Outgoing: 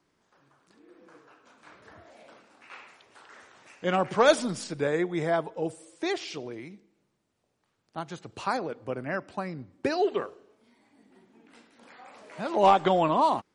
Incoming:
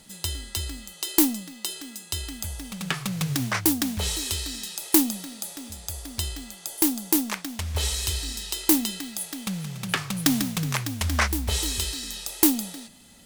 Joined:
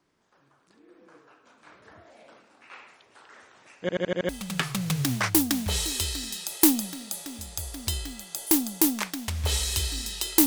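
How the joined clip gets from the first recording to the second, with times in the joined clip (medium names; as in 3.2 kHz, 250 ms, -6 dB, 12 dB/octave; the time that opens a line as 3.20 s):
outgoing
3.81 s: stutter in place 0.08 s, 6 plays
4.29 s: go over to incoming from 2.60 s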